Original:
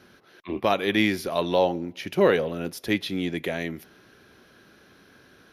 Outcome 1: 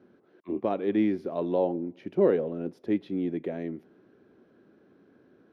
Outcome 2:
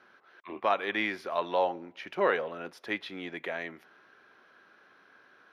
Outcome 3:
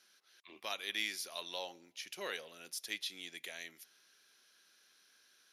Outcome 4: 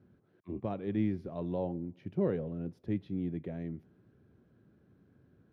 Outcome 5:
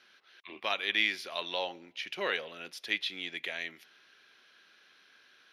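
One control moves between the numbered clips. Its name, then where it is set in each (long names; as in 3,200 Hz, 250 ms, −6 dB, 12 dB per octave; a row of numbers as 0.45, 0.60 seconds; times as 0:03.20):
resonant band-pass, frequency: 310, 1,200, 7,600, 110, 3,000 Hertz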